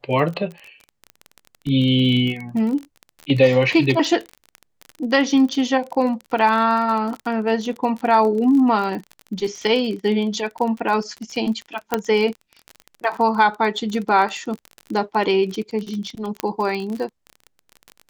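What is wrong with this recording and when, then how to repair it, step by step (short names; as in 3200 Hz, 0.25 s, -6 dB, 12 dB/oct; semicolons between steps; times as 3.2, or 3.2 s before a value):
crackle 29/s -26 dBFS
11.94 pop -4 dBFS
16.4 pop -8 dBFS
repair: de-click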